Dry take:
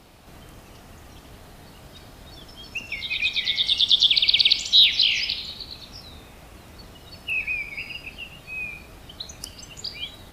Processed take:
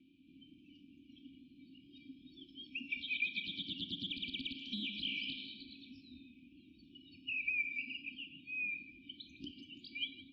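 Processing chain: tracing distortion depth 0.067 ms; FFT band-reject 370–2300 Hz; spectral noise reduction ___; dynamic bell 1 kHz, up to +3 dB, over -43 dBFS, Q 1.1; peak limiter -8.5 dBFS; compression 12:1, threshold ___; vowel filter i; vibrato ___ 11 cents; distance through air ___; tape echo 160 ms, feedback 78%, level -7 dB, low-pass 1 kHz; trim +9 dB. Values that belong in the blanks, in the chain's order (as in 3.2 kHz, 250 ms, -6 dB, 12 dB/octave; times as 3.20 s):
10 dB, -27 dBFS, 1.5 Hz, 290 m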